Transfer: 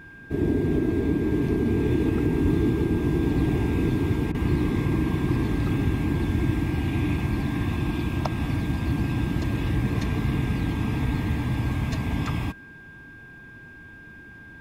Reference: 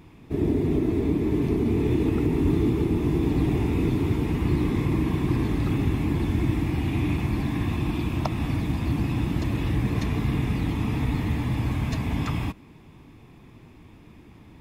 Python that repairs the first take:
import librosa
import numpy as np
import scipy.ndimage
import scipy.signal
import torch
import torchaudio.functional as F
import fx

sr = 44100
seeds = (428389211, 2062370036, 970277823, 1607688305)

y = fx.notch(x, sr, hz=1600.0, q=30.0)
y = fx.fix_interpolate(y, sr, at_s=(4.32,), length_ms=24.0)